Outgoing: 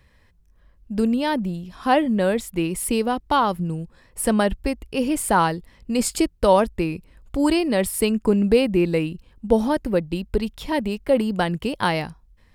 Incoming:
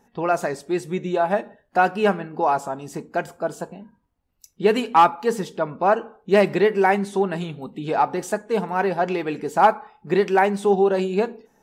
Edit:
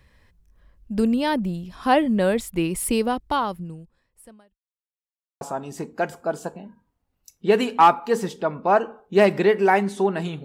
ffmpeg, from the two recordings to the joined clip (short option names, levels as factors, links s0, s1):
-filter_complex "[0:a]apad=whole_dur=10.44,atrim=end=10.44,asplit=2[s0][s1];[s0]atrim=end=4.62,asetpts=PTS-STARTPTS,afade=t=out:st=3.04:d=1.58:c=qua[s2];[s1]atrim=start=4.62:end=5.41,asetpts=PTS-STARTPTS,volume=0[s3];[1:a]atrim=start=2.57:end=7.6,asetpts=PTS-STARTPTS,afade=t=in:d=0.004:c=hsin[s4];[s2][s3][s4]concat=n=3:v=0:a=1"